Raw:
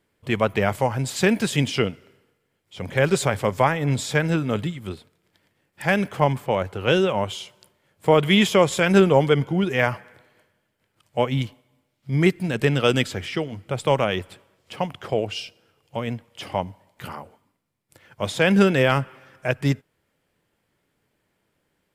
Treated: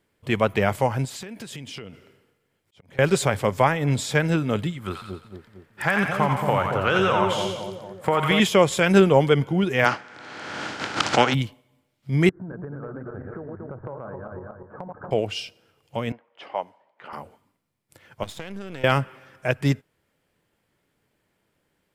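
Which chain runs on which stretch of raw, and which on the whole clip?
1.05–2.99 s: compression 16:1, threshold -33 dBFS + slow attack 409 ms
4.79–8.40 s: peaking EQ 1.3 kHz +11 dB 1.1 oct + compression, threshold -16 dBFS + two-band feedback delay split 760 Hz, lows 228 ms, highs 88 ms, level -3.5 dB
9.84–11.33 s: spectral contrast reduction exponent 0.54 + cabinet simulation 120–6100 Hz, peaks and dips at 290 Hz +7 dB, 810 Hz +6 dB, 1.4 kHz +9 dB + swell ahead of each attack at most 28 dB/s
12.29–15.11 s: backward echo that repeats 117 ms, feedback 49%, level -4 dB + Chebyshev low-pass 1.6 kHz, order 6 + compression 12:1, threshold -31 dBFS
16.12–17.13 s: high-pass 530 Hz + level-controlled noise filter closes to 1.9 kHz, open at -25 dBFS + treble shelf 2.1 kHz -9.5 dB
18.23–18.84 s: partial rectifier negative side -12 dB + expander -30 dBFS + compression 16:1, threshold -30 dBFS
whole clip: none

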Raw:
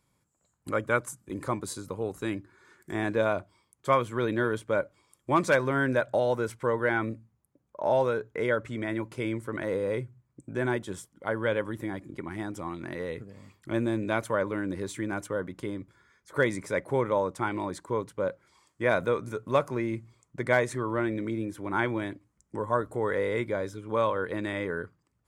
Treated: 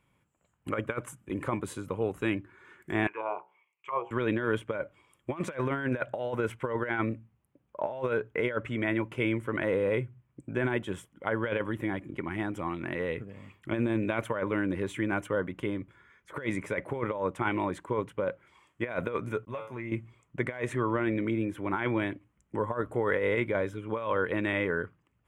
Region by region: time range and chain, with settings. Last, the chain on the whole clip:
3.07–4.11 s: de-hum 62.06 Hz, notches 15 + auto-wah 650–2400 Hz, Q 3.5, down, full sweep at -20.5 dBFS + rippled EQ curve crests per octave 0.72, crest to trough 15 dB
19.45–19.92 s: expander -41 dBFS + feedback comb 110 Hz, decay 0.24 s, mix 90% + compression 12:1, threshold -34 dBFS
whole clip: resonant high shelf 3.6 kHz -7.5 dB, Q 3; compressor with a negative ratio -28 dBFS, ratio -0.5

